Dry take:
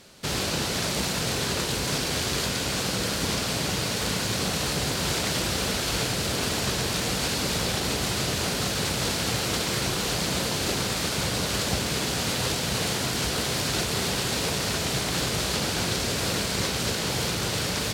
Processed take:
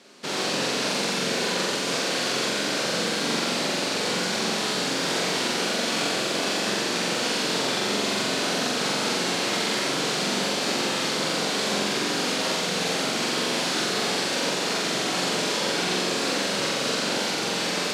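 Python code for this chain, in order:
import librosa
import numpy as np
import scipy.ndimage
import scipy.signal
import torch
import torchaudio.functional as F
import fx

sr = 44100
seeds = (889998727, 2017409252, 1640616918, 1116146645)

y = scipy.signal.sosfilt(scipy.signal.butter(4, 200.0, 'highpass', fs=sr, output='sos'), x)
y = fx.air_absorb(y, sr, metres=51.0)
y = fx.room_flutter(y, sr, wall_m=7.6, rt60_s=1.1)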